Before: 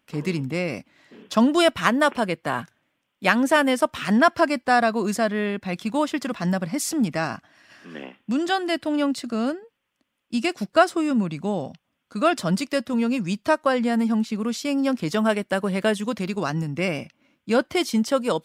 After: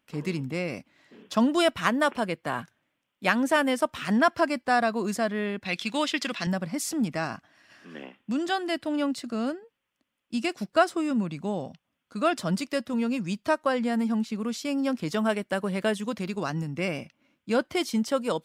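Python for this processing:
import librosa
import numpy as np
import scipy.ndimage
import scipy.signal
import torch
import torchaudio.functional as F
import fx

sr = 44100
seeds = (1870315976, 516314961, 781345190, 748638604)

y = fx.weighting(x, sr, curve='D', at=(5.65, 6.47))
y = F.gain(torch.from_numpy(y), -4.5).numpy()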